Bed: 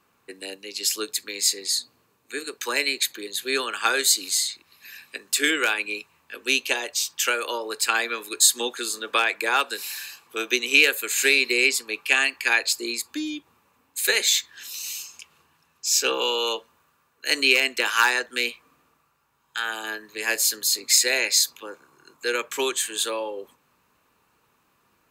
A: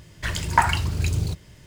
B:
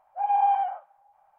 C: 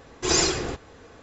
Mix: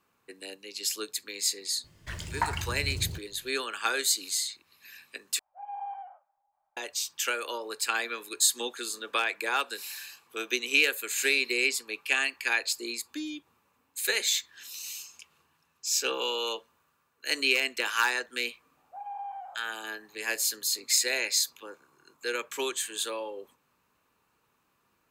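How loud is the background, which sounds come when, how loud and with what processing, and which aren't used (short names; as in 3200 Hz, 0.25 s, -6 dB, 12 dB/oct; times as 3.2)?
bed -6.5 dB
1.84 add A -11 dB
5.39 replace with B -16 dB
18.77 add B -7 dB + compressor 2:1, threshold -37 dBFS
not used: C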